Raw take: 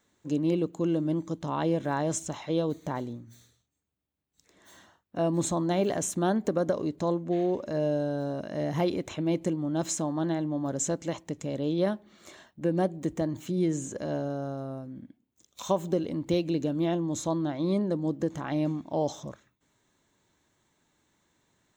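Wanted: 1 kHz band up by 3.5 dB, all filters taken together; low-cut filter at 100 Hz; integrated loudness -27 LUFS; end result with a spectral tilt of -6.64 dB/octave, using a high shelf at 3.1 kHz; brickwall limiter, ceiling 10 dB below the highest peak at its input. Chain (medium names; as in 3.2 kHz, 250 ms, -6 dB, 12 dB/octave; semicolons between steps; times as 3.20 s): high-pass 100 Hz; peaking EQ 1 kHz +5.5 dB; treble shelf 3.1 kHz -8 dB; trim +5 dB; peak limiter -16 dBFS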